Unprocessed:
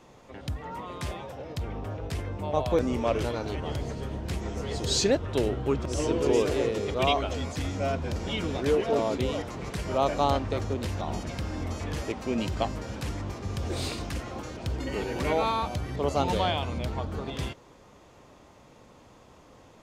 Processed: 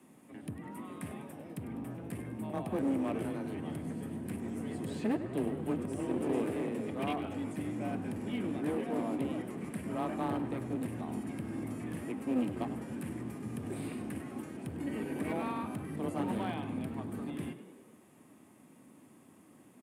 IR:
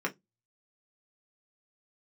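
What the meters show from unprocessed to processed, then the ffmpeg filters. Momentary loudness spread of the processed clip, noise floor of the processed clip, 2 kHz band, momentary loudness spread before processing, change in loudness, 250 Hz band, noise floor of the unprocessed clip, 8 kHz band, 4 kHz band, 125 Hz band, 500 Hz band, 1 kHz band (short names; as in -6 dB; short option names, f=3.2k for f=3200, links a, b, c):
9 LU, -59 dBFS, -9.5 dB, 11 LU, -7.5 dB, -1.5 dB, -54 dBFS, -14.0 dB, -18.5 dB, -9.5 dB, -11.0 dB, -10.5 dB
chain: -filter_complex "[0:a]afreqshift=21,acrossover=split=2900[a][b];[b]acompressor=threshold=-54dB:ratio=6[c];[a][c]amix=inputs=2:normalize=0,equalizer=f=250:t=o:w=1:g=9,equalizer=f=500:t=o:w=1:g=-10,equalizer=f=1k:t=o:w=1:g=-6,equalizer=f=4k:t=o:w=1:g=-9,asplit=2[d][e];[e]asplit=5[f][g][h][i][j];[f]adelay=100,afreqshift=53,volume=-13.5dB[k];[g]adelay=200,afreqshift=106,volume=-18.9dB[l];[h]adelay=300,afreqshift=159,volume=-24.2dB[m];[i]adelay=400,afreqshift=212,volume=-29.6dB[n];[j]adelay=500,afreqshift=265,volume=-34.9dB[o];[k][l][m][n][o]amix=inputs=5:normalize=0[p];[d][p]amix=inputs=2:normalize=0,aeval=exprs='clip(val(0),-1,0.0422)':c=same,highpass=180,highshelf=f=7.7k:t=q:w=3:g=7.5,bandreject=f=1.4k:w=15,volume=-3.5dB"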